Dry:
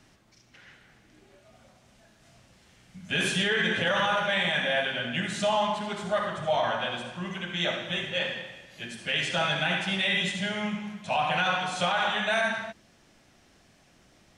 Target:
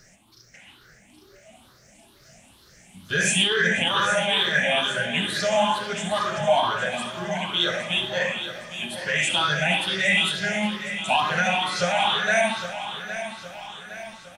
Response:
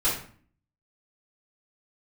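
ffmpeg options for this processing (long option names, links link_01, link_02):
-af "afftfilt=real='re*pow(10,16/40*sin(2*PI*(0.57*log(max(b,1)*sr/1024/100)/log(2)-(2.2)*(pts-256)/sr)))':imag='im*pow(10,16/40*sin(2*PI*(0.57*log(max(b,1)*sr/1024/100)/log(2)-(2.2)*(pts-256)/sr)))':win_size=1024:overlap=0.75,aecho=1:1:812|1624|2436|3248|4060:0.282|0.141|0.0705|0.0352|0.0176,crystalizer=i=1.5:c=0"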